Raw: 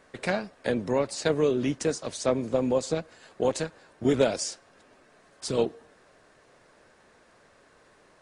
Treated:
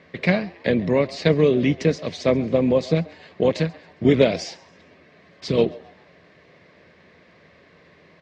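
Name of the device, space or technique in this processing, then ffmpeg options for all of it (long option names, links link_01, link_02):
frequency-shifting delay pedal into a guitar cabinet: -filter_complex "[0:a]asplit=4[link_01][link_02][link_03][link_04];[link_02]adelay=135,afreqshift=130,volume=-22dB[link_05];[link_03]adelay=270,afreqshift=260,volume=-30dB[link_06];[link_04]adelay=405,afreqshift=390,volume=-37.9dB[link_07];[link_01][link_05][link_06][link_07]amix=inputs=4:normalize=0,highpass=75,equalizer=frequency=82:width_type=q:width=4:gain=9,equalizer=frequency=170:width_type=q:width=4:gain=10,equalizer=frequency=840:width_type=q:width=4:gain=-8,equalizer=frequency=1400:width_type=q:width=4:gain=-9,equalizer=frequency=2100:width_type=q:width=4:gain=7,lowpass=frequency=4600:width=0.5412,lowpass=frequency=4600:width=1.3066,volume=6.5dB"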